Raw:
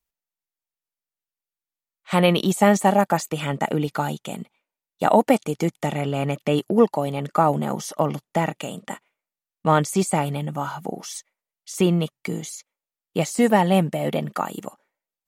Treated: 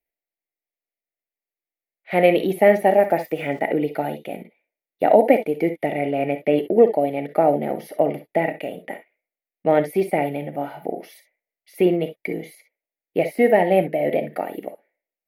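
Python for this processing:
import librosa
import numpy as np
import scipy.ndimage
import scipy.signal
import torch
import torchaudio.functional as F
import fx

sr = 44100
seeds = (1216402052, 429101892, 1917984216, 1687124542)

y = fx.curve_eq(x, sr, hz=(190.0, 300.0, 710.0, 1100.0, 2100.0, 3200.0, 4700.0, 7600.0, 11000.0), db=(0, 11, 13, -11, 14, -2, -4, -25, 5))
y = fx.sample_gate(y, sr, floor_db=-38.5, at=(2.85, 3.6))
y = fx.rev_gated(y, sr, seeds[0], gate_ms=80, shape='rising', drr_db=9.0)
y = y * librosa.db_to_amplitude(-8.0)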